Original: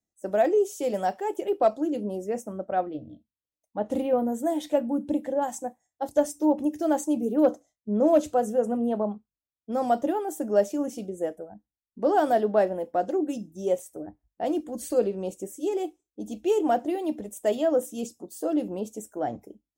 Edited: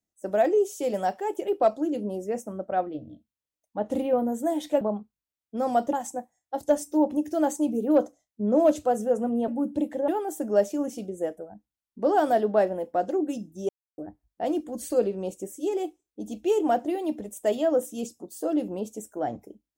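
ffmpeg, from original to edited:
ffmpeg -i in.wav -filter_complex "[0:a]asplit=7[link_01][link_02][link_03][link_04][link_05][link_06][link_07];[link_01]atrim=end=4.812[link_08];[link_02]atrim=start=8.958:end=10.082[link_09];[link_03]atrim=start=5.408:end=8.962[link_10];[link_04]atrim=start=4.808:end=5.412[link_11];[link_05]atrim=start=10.078:end=13.69,asetpts=PTS-STARTPTS,afade=type=out:start_time=3.608:duration=0.004:curve=hsin[link_12];[link_06]atrim=start=13.69:end=13.98,asetpts=PTS-STARTPTS,volume=0[link_13];[link_07]atrim=start=13.98,asetpts=PTS-STARTPTS,afade=type=in:duration=0.004:curve=hsin[link_14];[link_08][link_09]acrossfade=duration=0.004:curve1=hsin:curve2=hsin[link_15];[link_15][link_10]acrossfade=duration=0.004:curve1=hsin:curve2=hsin[link_16];[link_16][link_11]acrossfade=duration=0.004:curve1=hsin:curve2=hsin[link_17];[link_12][link_13][link_14]concat=n=3:v=0:a=1[link_18];[link_17][link_18]acrossfade=duration=0.004:curve1=hsin:curve2=hsin" out.wav

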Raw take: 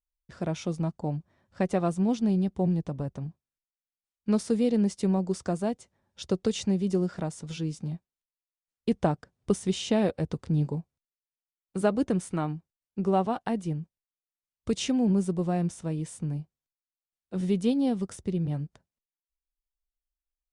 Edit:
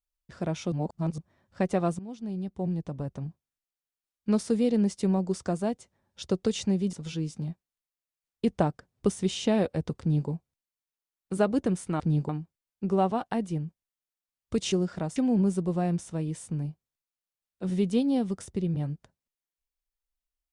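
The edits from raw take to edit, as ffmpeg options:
ffmpeg -i in.wav -filter_complex "[0:a]asplit=9[link_01][link_02][link_03][link_04][link_05][link_06][link_07][link_08][link_09];[link_01]atrim=end=0.722[link_10];[link_02]atrim=start=0.718:end=1.182,asetpts=PTS-STARTPTS,areverse[link_11];[link_03]atrim=start=1.178:end=1.99,asetpts=PTS-STARTPTS,afade=type=out:start_time=0.808:duration=0.004:curve=hsin:silence=0.11885[link_12];[link_04]atrim=start=1.99:end=6.932,asetpts=PTS-STARTPTS,afade=type=in:duration=1.24:silence=0.11885[link_13];[link_05]atrim=start=7.368:end=12.442[link_14];[link_06]atrim=start=10.438:end=10.732[link_15];[link_07]atrim=start=12.438:end=14.872[link_16];[link_08]atrim=start=6.928:end=7.372[link_17];[link_09]atrim=start=14.868[link_18];[link_10][link_11]acrossfade=duration=0.004:curve1=hsin:curve2=hsin[link_19];[link_12][link_13]concat=n=2:v=0:a=1[link_20];[link_19][link_20]acrossfade=duration=0.004:curve1=hsin:curve2=hsin[link_21];[link_21][link_14]acrossfade=duration=0.004:curve1=hsin:curve2=hsin[link_22];[link_22][link_15]acrossfade=duration=0.004:curve1=hsin:curve2=hsin[link_23];[link_23][link_16]acrossfade=duration=0.004:curve1=hsin:curve2=hsin[link_24];[link_24][link_17]acrossfade=duration=0.004:curve1=hsin:curve2=hsin[link_25];[link_25][link_18]acrossfade=duration=0.004:curve1=hsin:curve2=hsin" out.wav

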